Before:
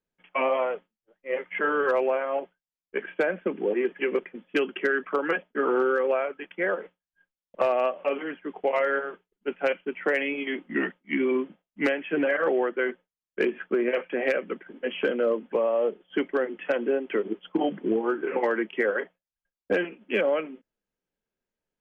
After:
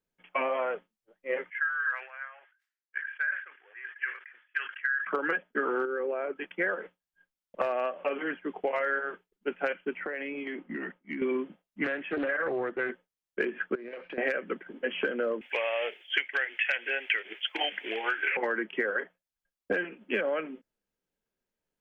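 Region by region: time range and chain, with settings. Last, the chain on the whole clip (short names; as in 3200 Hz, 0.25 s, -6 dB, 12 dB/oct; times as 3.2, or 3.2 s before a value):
1.5–5.07 ladder high-pass 1500 Hz, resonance 65% + tilt -3.5 dB/oct + sustainer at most 110 dB/s
5.85–6.36 LPF 1700 Hz 6 dB/oct + bell 340 Hz +8.5 dB 0.68 oct + compressor 4:1, threshold -28 dBFS
9.97–11.22 LPF 2400 Hz + compressor 16:1, threshold -32 dBFS
11.84–12.9 LPF 3100 Hz 6 dB/oct + compressor 1.5:1, threshold -34 dBFS + Doppler distortion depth 0.28 ms
13.75–14.18 CVSD 64 kbps + steep low-pass 3900 Hz + compressor 20:1, threshold -36 dBFS
15.41–18.37 resonant high-pass 820 Hz, resonance Q 1.6 + resonant high shelf 1600 Hz +12 dB, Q 3
whole clip: dynamic EQ 1600 Hz, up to +8 dB, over -44 dBFS, Q 2.5; compressor, threshold -26 dBFS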